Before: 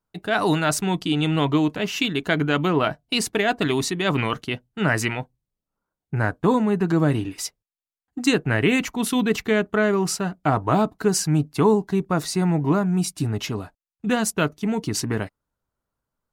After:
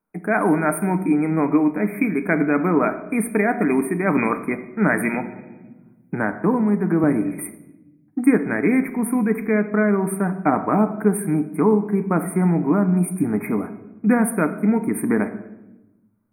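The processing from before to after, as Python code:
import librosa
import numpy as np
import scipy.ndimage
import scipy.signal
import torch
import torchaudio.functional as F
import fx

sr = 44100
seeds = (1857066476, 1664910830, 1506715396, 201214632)

y = fx.low_shelf_res(x, sr, hz=160.0, db=-8.5, q=3.0)
y = fx.rider(y, sr, range_db=4, speed_s=0.5)
y = fx.brickwall_bandstop(y, sr, low_hz=2500.0, high_hz=8500.0)
y = fx.room_shoebox(y, sr, seeds[0], volume_m3=410.0, walls='mixed', distance_m=0.46)
y = fx.band_squash(y, sr, depth_pct=40, at=(5.14, 7.04))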